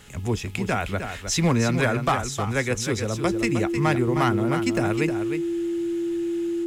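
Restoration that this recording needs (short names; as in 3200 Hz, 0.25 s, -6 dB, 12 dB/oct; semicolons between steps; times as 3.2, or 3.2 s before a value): de-hum 418.8 Hz, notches 26; notch 340 Hz, Q 30; interpolate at 4.77, 1.7 ms; inverse comb 0.31 s -8 dB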